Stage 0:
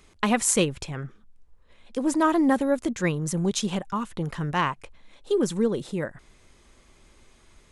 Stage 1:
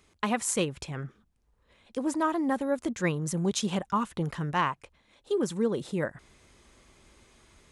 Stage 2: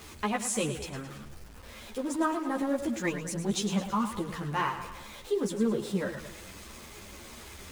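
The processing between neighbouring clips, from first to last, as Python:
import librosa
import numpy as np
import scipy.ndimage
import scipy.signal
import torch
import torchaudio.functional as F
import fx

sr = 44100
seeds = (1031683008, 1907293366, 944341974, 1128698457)

y1 = scipy.signal.sosfilt(scipy.signal.butter(2, 42.0, 'highpass', fs=sr, output='sos'), x)
y1 = fx.dynamic_eq(y1, sr, hz=1000.0, q=0.84, threshold_db=-33.0, ratio=4.0, max_db=3)
y1 = fx.rider(y1, sr, range_db=4, speed_s=0.5)
y1 = y1 * librosa.db_to_amplitude(-4.5)
y2 = y1 + 0.5 * 10.0 ** (-39.0 / 20.0) * np.sign(y1)
y2 = fx.echo_feedback(y2, sr, ms=108, feedback_pct=52, wet_db=-10.0)
y2 = fx.ensemble(y2, sr)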